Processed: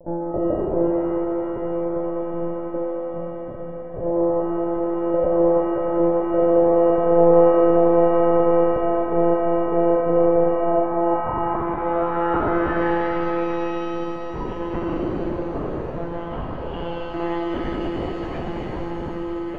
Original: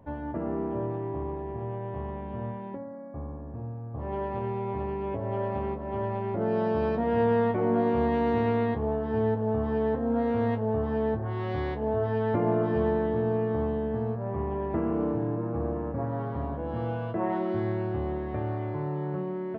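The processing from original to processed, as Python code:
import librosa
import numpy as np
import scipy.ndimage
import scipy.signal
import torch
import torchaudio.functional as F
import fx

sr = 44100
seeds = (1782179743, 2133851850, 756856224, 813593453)

y = fx.filter_sweep_lowpass(x, sr, from_hz=570.0, to_hz=3000.0, start_s=10.45, end_s=13.97, q=6.1)
y = fx.lpc_monotone(y, sr, seeds[0], pitch_hz=170.0, order=16)
y = fx.rev_shimmer(y, sr, seeds[1], rt60_s=2.9, semitones=7, shimmer_db=-8, drr_db=3.5)
y = y * librosa.db_to_amplitude(1.5)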